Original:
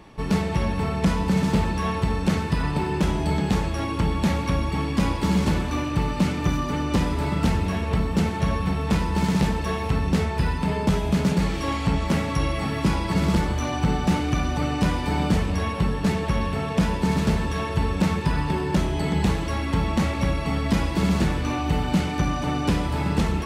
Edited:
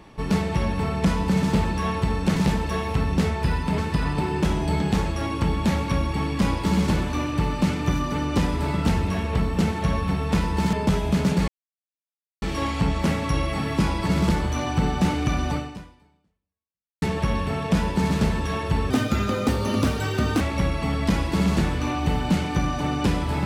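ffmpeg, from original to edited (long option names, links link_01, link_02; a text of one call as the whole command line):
ffmpeg -i in.wav -filter_complex "[0:a]asplit=8[link_01][link_02][link_03][link_04][link_05][link_06][link_07][link_08];[link_01]atrim=end=2.362[link_09];[link_02]atrim=start=9.308:end=10.732[link_10];[link_03]atrim=start=2.358:end=9.312[link_11];[link_04]atrim=start=10.728:end=11.48,asetpts=PTS-STARTPTS,afade=type=out:start_time=0.748:duration=0.004:curve=hsin,apad=pad_dur=0.94[link_12];[link_05]atrim=start=11.48:end=16.08,asetpts=PTS-STARTPTS,afade=type=in:duration=0.004:curve=hsin,afade=type=out:start_time=3.11:duration=1.49:curve=exp[link_13];[link_06]atrim=start=16.08:end=17.964,asetpts=PTS-STARTPTS,afade=type=in:duration=0.004:curve=hsin[link_14];[link_07]atrim=start=17.96:end=20.04,asetpts=PTS-STARTPTS,asetrate=60858,aresample=44100[link_15];[link_08]atrim=start=20.036[link_16];[link_09][link_10]acrossfade=duration=0.004:curve1=hsin:curve2=hsin[link_17];[link_17][link_11]acrossfade=duration=0.004:curve1=hsin:curve2=hsin[link_18];[link_12][link_13][link_14]concat=n=3:v=0:a=1[link_19];[link_18][link_19]acrossfade=duration=0.004:curve1=hsin:curve2=hsin[link_20];[link_20][link_15]acrossfade=duration=0.004:curve1=hsin:curve2=hsin[link_21];[link_21][link_16]acrossfade=duration=0.004:curve1=hsin:curve2=hsin" out.wav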